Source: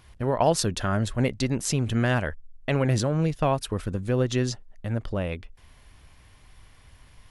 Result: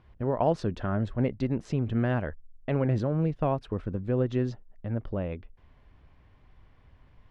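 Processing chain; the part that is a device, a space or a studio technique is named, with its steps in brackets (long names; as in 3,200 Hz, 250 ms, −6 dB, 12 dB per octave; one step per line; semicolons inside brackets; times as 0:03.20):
phone in a pocket (low-pass filter 3,800 Hz 12 dB per octave; parametric band 300 Hz +3 dB 2.5 octaves; high-shelf EQ 2,100 Hz −11 dB)
level −4.5 dB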